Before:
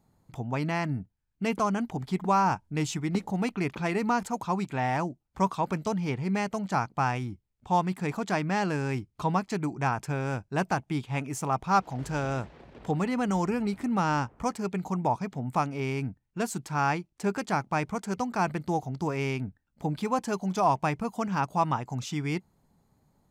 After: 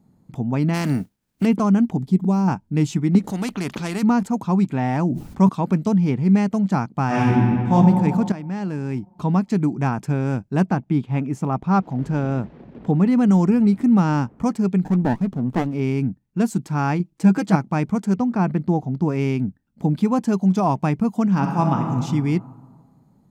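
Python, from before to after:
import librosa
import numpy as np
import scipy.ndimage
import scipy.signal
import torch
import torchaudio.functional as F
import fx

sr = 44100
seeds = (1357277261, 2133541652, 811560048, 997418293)

y = fx.spec_flatten(x, sr, power=0.54, at=(0.73, 1.44), fade=0.02)
y = fx.peak_eq(y, sr, hz=1500.0, db=-13.0, octaves=2.1, at=(1.99, 2.48))
y = fx.spectral_comp(y, sr, ratio=2.0, at=(3.24, 4.03))
y = fx.sustainer(y, sr, db_per_s=47.0, at=(4.86, 5.49))
y = fx.reverb_throw(y, sr, start_s=7.06, length_s=0.67, rt60_s=2.2, drr_db=-9.0)
y = fx.high_shelf(y, sr, hz=4900.0, db=-12.0, at=(10.63, 13.06))
y = fx.running_max(y, sr, window=17, at=(14.83, 15.74))
y = fx.comb(y, sr, ms=6.2, depth=0.93, at=(16.99, 17.56))
y = fx.lowpass(y, sr, hz=2500.0, slope=6, at=(18.17, 19.08))
y = fx.reverb_throw(y, sr, start_s=21.31, length_s=0.7, rt60_s=1.7, drr_db=2.5)
y = fx.edit(y, sr, fx.fade_in_from(start_s=8.32, length_s=1.31, floor_db=-14.0), tone=tone)
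y = fx.peak_eq(y, sr, hz=210.0, db=14.0, octaves=1.8)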